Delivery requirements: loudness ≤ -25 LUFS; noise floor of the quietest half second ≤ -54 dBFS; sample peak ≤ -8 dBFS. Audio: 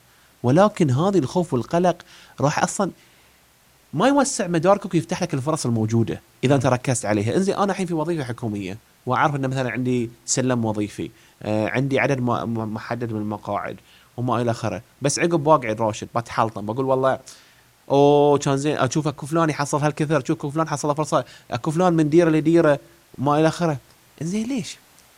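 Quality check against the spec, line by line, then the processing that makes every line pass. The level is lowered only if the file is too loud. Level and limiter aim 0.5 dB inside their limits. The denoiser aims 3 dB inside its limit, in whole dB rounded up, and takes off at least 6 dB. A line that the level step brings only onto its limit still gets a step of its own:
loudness -21.5 LUFS: fail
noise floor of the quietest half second -56 dBFS: OK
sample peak -2.5 dBFS: fail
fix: gain -4 dB; limiter -8.5 dBFS

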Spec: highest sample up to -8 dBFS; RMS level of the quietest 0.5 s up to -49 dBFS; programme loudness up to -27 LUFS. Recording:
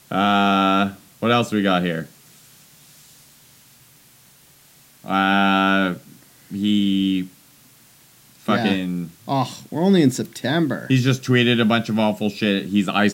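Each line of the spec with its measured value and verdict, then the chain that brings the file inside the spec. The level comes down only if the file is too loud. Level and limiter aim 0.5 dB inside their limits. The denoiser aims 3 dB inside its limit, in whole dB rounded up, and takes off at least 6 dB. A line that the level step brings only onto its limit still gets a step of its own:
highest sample -5.5 dBFS: fail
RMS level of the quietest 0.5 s -52 dBFS: OK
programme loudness -19.5 LUFS: fail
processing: gain -8 dB

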